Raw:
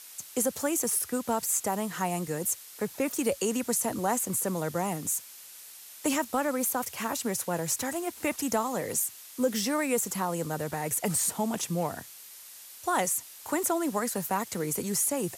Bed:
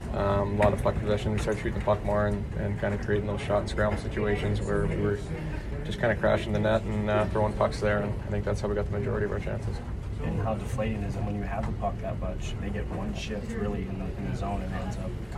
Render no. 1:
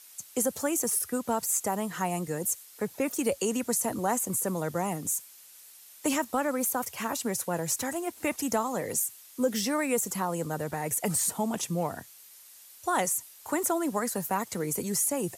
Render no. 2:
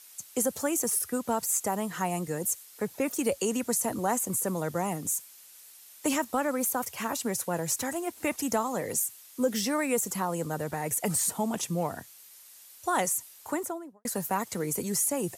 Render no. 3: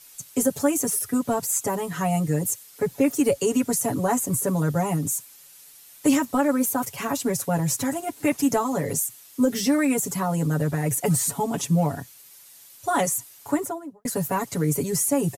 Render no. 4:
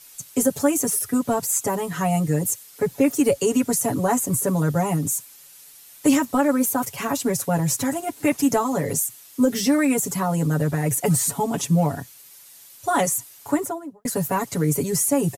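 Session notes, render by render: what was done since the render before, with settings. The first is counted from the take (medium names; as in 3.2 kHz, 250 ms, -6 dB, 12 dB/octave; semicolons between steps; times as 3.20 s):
noise reduction 6 dB, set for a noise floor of -48 dBFS
13.37–14.05 s: studio fade out
bass shelf 260 Hz +11.5 dB; comb 7.1 ms, depth 99%
trim +2 dB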